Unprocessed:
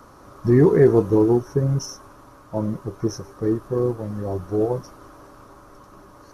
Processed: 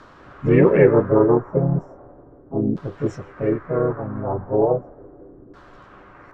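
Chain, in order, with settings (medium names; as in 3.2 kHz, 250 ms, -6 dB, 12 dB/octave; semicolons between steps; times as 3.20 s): LFO low-pass saw down 0.36 Hz 290–3600 Hz; harmony voices +4 st -3 dB, +7 st -17 dB; trim -1.5 dB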